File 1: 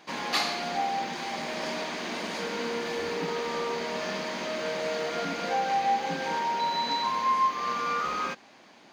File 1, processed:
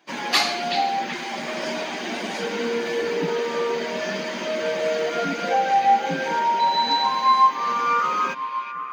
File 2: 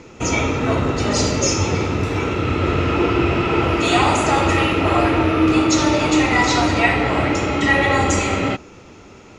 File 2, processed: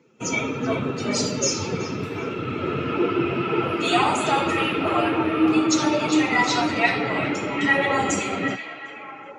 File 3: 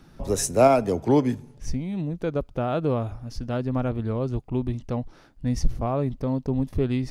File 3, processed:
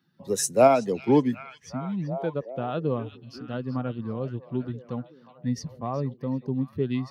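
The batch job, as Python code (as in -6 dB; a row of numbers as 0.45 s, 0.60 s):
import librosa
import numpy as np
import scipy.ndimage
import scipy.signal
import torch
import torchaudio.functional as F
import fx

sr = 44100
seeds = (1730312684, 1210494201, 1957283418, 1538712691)

y = fx.bin_expand(x, sr, power=1.5)
y = scipy.signal.sosfilt(scipy.signal.butter(4, 130.0, 'highpass', fs=sr, output='sos'), y)
y = fx.echo_stepped(y, sr, ms=377, hz=3200.0, octaves=-0.7, feedback_pct=70, wet_db=-7)
y = y * 10.0 ** (-6 / 20.0) / np.max(np.abs(y))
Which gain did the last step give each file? +9.5 dB, -1.0 dB, +1.0 dB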